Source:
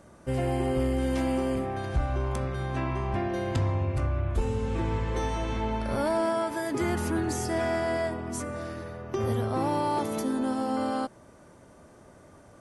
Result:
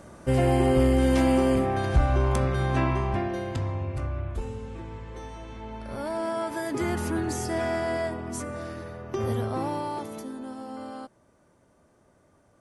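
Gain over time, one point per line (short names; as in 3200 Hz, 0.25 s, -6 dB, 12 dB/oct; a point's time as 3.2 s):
2.82 s +6 dB
3.55 s -3 dB
4.21 s -3 dB
4.86 s -10.5 dB
5.57 s -10.5 dB
6.55 s 0 dB
9.43 s 0 dB
10.38 s -9.5 dB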